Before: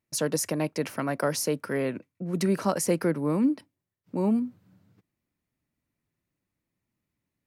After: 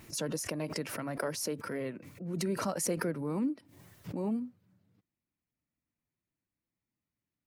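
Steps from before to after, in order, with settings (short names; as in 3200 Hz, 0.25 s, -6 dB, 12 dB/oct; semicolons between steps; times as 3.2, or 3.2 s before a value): bin magnitudes rounded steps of 15 dB; backwards sustainer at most 53 dB/s; gain -8.5 dB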